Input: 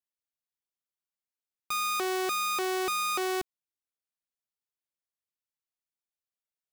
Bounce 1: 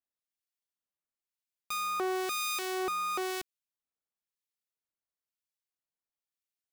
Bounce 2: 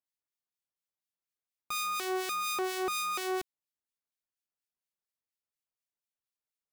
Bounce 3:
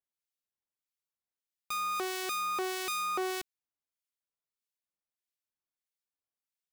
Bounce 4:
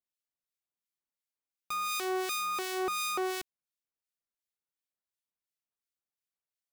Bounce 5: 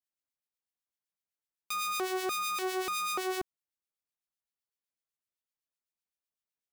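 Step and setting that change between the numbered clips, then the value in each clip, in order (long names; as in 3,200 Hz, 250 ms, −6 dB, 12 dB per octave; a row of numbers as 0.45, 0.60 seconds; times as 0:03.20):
two-band tremolo in antiphase, speed: 1, 4.2, 1.6, 2.8, 7.9 Hertz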